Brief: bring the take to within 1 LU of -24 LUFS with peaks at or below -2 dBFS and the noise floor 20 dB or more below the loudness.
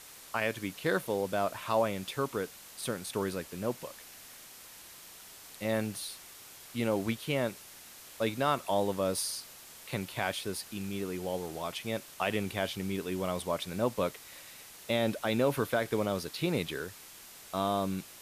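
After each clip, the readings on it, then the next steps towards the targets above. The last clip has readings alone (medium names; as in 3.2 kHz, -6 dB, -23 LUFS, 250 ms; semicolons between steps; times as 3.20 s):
noise floor -51 dBFS; noise floor target -54 dBFS; loudness -33.5 LUFS; peak level -15.5 dBFS; loudness target -24.0 LUFS
-> noise print and reduce 6 dB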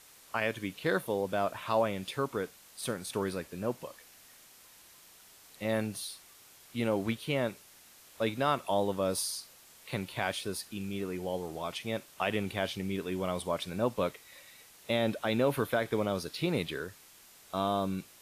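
noise floor -57 dBFS; loudness -33.5 LUFS; peak level -15.5 dBFS; loudness target -24.0 LUFS
-> trim +9.5 dB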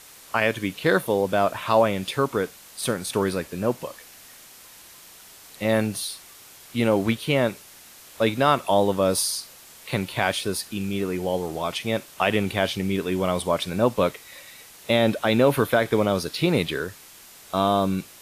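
loudness -24.0 LUFS; peak level -6.0 dBFS; noise floor -48 dBFS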